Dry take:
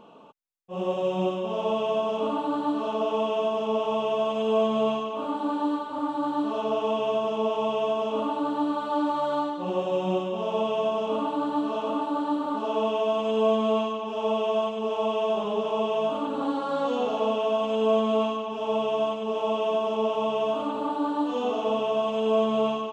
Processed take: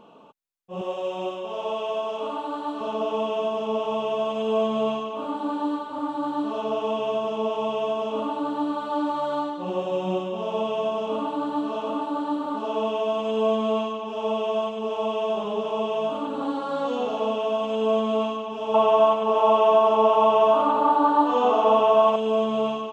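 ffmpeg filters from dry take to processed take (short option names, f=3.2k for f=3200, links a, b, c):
-filter_complex "[0:a]asettb=1/sr,asplit=3[a][b][c];[a]atrim=end=0.814[d];[b]atrim=start=0.81:end=2.81,asetpts=PTS-STARTPTS,afade=t=in:d=0.004:c=qsin,afade=t=out:st=1.996:d=0.004:c=qsin,equalizer=f=160:t=o:w=1.6:g=-14[e];[c]atrim=start=2.806[f];[d][e]acrossfade=d=0.004:c1=hsin:c2=qsin[g];[g][f]acrossfade=d=0.004:c1=qsin:c2=hsin,asettb=1/sr,asplit=3[h][i][j];[h]atrim=end=18.744[k];[i]atrim=start=18.74:end=22.16,asetpts=PTS-STARTPTS,afade=t=in:d=0.004:c=qsin,afade=t=out:st=3.416:d=0.004:c=qsin,equalizer=f=1k:t=o:w=1.9:g=12[l];[j]atrim=start=22.156[m];[k][l]acrossfade=d=0.004:c1=hsin:c2=qsin[n];[n][m]acrossfade=d=0.004:c1=qsin:c2=hsin"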